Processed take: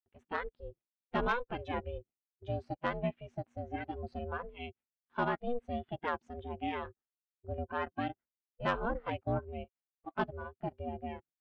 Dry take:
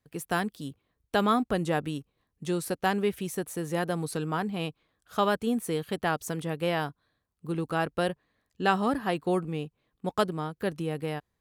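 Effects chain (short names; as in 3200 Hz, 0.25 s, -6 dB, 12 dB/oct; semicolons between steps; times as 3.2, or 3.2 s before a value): half-wave gain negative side -7 dB; LPF 2900 Hz 24 dB/oct; gate with hold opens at -52 dBFS; 9.64–10.14 Bessel high-pass 510 Hz; spectral noise reduction 17 dB; 1.28–1.74 tilt +3 dB/oct; ring modulator 240 Hz; soft clip -18 dBFS, distortion -20 dB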